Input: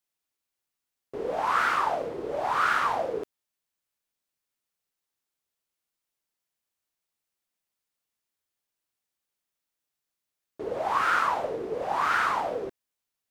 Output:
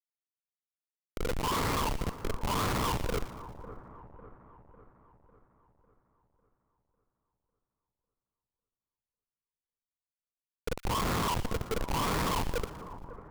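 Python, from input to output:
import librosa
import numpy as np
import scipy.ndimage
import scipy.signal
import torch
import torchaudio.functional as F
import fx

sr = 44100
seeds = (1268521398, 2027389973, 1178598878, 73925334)

y = fx.ripple_eq(x, sr, per_octave=0.89, db=15)
y = fx.schmitt(y, sr, flips_db=-22.0)
y = fx.echo_split(y, sr, split_hz=1500.0, low_ms=550, high_ms=116, feedback_pct=52, wet_db=-14.0)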